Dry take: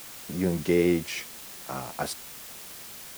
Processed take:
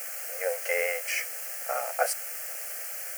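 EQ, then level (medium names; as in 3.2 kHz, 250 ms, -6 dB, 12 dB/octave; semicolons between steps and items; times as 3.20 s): brick-wall FIR high-pass 460 Hz; static phaser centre 1 kHz, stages 6; band-stop 3.5 kHz, Q 25; +8.0 dB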